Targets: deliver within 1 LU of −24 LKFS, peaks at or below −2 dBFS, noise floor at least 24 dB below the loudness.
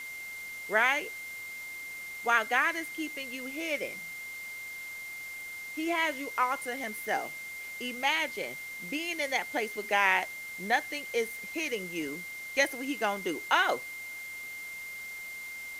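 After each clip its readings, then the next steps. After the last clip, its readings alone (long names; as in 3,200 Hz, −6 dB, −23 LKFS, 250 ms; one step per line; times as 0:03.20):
interfering tone 2,100 Hz; level of the tone −39 dBFS; background noise floor −42 dBFS; target noise floor −56 dBFS; integrated loudness −31.5 LKFS; sample peak −10.0 dBFS; target loudness −24.0 LKFS
→ notch filter 2,100 Hz, Q 30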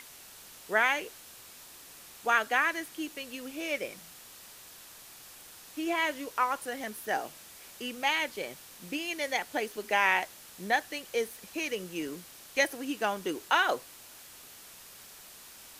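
interfering tone none found; background noise floor −51 dBFS; target noise floor −55 dBFS
→ noise reduction from a noise print 6 dB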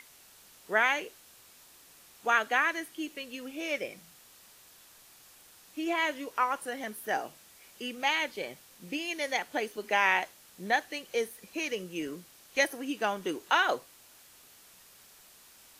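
background noise floor −57 dBFS; integrated loudness −31.0 LKFS; sample peak −10.5 dBFS; target loudness −24.0 LKFS
→ level +7 dB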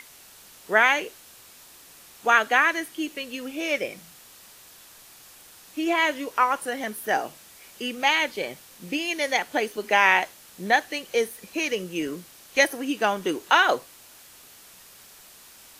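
integrated loudness −24.0 LKFS; sample peak −3.5 dBFS; background noise floor −50 dBFS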